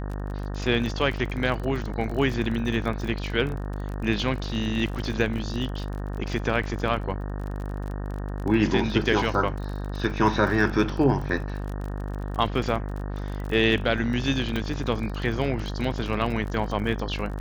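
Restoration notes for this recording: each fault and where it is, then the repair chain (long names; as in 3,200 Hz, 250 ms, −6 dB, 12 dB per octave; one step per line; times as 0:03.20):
mains buzz 50 Hz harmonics 37 −31 dBFS
surface crackle 36 per second −32 dBFS
0:14.56: click −15 dBFS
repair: click removal
hum removal 50 Hz, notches 37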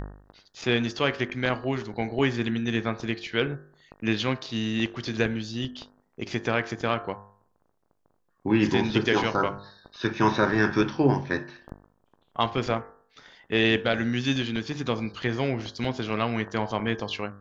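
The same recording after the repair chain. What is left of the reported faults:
none of them is left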